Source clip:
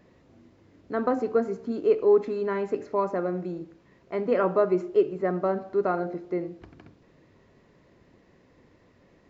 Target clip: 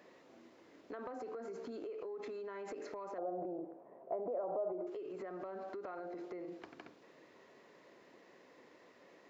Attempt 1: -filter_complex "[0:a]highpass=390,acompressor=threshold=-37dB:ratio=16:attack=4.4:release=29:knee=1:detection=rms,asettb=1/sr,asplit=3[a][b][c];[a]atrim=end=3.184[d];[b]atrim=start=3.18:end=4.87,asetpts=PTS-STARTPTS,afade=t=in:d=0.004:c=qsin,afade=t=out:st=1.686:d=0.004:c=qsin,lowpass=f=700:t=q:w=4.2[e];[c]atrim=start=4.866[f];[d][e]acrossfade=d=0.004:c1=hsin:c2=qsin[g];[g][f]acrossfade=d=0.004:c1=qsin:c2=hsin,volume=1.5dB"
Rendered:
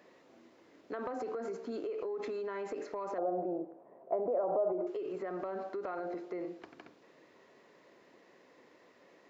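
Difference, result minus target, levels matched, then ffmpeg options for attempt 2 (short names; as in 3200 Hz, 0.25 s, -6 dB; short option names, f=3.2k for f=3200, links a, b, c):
compressor: peak gain reduction -6.5 dB
-filter_complex "[0:a]highpass=390,acompressor=threshold=-44dB:ratio=16:attack=4.4:release=29:knee=1:detection=rms,asettb=1/sr,asplit=3[a][b][c];[a]atrim=end=3.184[d];[b]atrim=start=3.18:end=4.87,asetpts=PTS-STARTPTS,afade=t=in:d=0.004:c=qsin,afade=t=out:st=1.686:d=0.004:c=qsin,lowpass=f=700:t=q:w=4.2[e];[c]atrim=start=4.866[f];[d][e]acrossfade=d=0.004:c1=hsin:c2=qsin[g];[g][f]acrossfade=d=0.004:c1=qsin:c2=hsin,volume=1.5dB"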